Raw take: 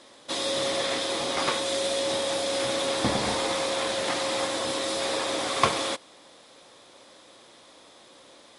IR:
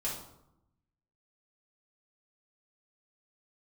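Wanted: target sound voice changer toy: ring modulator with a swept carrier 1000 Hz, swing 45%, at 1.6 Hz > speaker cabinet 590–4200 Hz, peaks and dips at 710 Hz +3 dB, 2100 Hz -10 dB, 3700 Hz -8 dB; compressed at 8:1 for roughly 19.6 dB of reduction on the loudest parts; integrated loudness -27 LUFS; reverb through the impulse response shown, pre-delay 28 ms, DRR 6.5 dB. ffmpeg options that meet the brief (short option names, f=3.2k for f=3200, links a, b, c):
-filter_complex "[0:a]acompressor=threshold=-38dB:ratio=8,asplit=2[a][b];[1:a]atrim=start_sample=2205,adelay=28[c];[b][c]afir=irnorm=-1:irlink=0,volume=-10dB[d];[a][d]amix=inputs=2:normalize=0,aeval=exprs='val(0)*sin(2*PI*1000*n/s+1000*0.45/1.6*sin(2*PI*1.6*n/s))':c=same,highpass=590,equalizer=f=710:t=q:w=4:g=3,equalizer=f=2.1k:t=q:w=4:g=-10,equalizer=f=3.7k:t=q:w=4:g=-8,lowpass=f=4.2k:w=0.5412,lowpass=f=4.2k:w=1.3066,volume=18.5dB"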